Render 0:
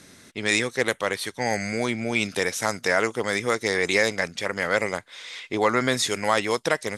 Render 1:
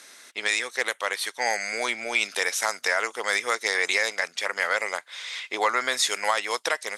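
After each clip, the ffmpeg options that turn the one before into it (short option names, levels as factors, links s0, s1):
-af "highpass=730,alimiter=limit=0.2:level=0:latency=1:release=349,volume=1.5"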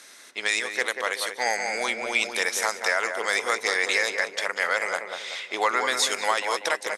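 -filter_complex "[0:a]asplit=2[s0][s1];[s1]adelay=190,lowpass=f=1200:p=1,volume=0.631,asplit=2[s2][s3];[s3]adelay=190,lowpass=f=1200:p=1,volume=0.48,asplit=2[s4][s5];[s5]adelay=190,lowpass=f=1200:p=1,volume=0.48,asplit=2[s6][s7];[s7]adelay=190,lowpass=f=1200:p=1,volume=0.48,asplit=2[s8][s9];[s9]adelay=190,lowpass=f=1200:p=1,volume=0.48,asplit=2[s10][s11];[s11]adelay=190,lowpass=f=1200:p=1,volume=0.48[s12];[s0][s2][s4][s6][s8][s10][s12]amix=inputs=7:normalize=0"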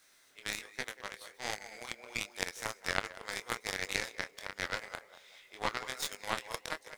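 -af "aeval=exprs='val(0)+0.5*0.0224*sgn(val(0))':c=same,flanger=delay=20:depth=5.8:speed=1.3,aeval=exprs='0.299*(cos(1*acos(clip(val(0)/0.299,-1,1)))-cos(1*PI/2))+0.0531*(cos(2*acos(clip(val(0)/0.299,-1,1)))-cos(2*PI/2))+0.0944*(cos(3*acos(clip(val(0)/0.299,-1,1)))-cos(3*PI/2))+0.00376*(cos(8*acos(clip(val(0)/0.299,-1,1)))-cos(8*PI/2))':c=same"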